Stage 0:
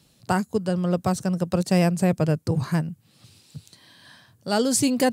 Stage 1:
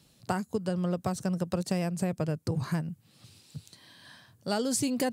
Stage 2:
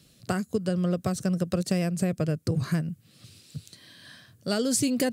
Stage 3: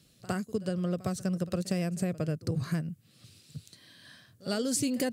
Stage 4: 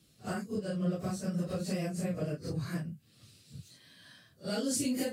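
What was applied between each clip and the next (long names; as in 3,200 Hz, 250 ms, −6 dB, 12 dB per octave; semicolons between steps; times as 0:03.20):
downward compressor, threshold −23 dBFS, peak gain reduction 9 dB; level −2.5 dB
parametric band 890 Hz −14 dB 0.39 octaves; level +4 dB
echo ahead of the sound 59 ms −19 dB; level −4.5 dB
random phases in long frames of 100 ms; level −2.5 dB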